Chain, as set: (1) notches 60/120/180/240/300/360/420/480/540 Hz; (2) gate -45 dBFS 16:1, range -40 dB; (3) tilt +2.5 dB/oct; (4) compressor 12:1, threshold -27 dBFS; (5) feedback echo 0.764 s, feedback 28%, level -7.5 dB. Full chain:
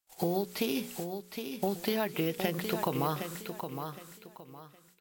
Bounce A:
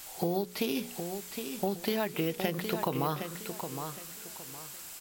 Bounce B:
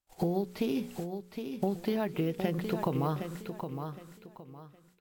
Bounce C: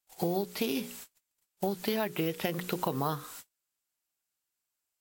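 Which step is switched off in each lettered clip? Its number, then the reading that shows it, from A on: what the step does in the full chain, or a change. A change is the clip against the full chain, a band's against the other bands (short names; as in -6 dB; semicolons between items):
2, momentary loudness spread change -8 LU; 3, 8 kHz band -9.0 dB; 5, momentary loudness spread change -4 LU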